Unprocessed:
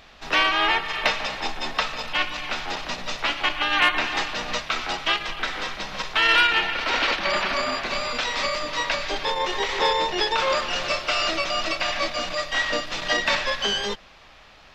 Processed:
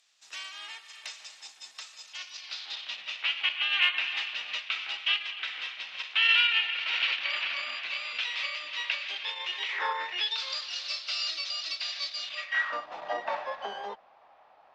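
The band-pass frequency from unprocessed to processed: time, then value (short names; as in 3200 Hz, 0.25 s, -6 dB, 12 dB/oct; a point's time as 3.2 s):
band-pass, Q 3
1.95 s 7900 Hz
3.05 s 2800 Hz
9.67 s 2800 Hz
9.9 s 1200 Hz
10.38 s 4400 Hz
12.19 s 4400 Hz
12.9 s 780 Hz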